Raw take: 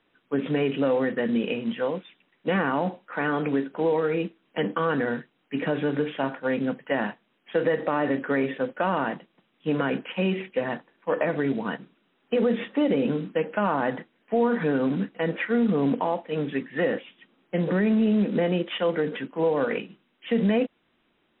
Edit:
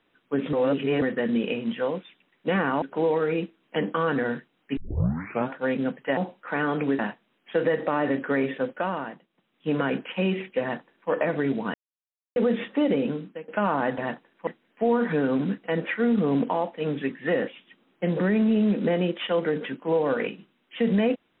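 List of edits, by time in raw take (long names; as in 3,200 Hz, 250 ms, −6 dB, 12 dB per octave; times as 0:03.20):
0:00.53–0:01.02: reverse
0:02.82–0:03.64: move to 0:06.99
0:05.59: tape start 0.73 s
0:08.67–0:09.73: duck −11.5 dB, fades 0.49 s
0:10.61–0:11.10: duplicate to 0:13.98
0:11.74–0:12.36: silence
0:12.93–0:13.48: fade out, to −21.5 dB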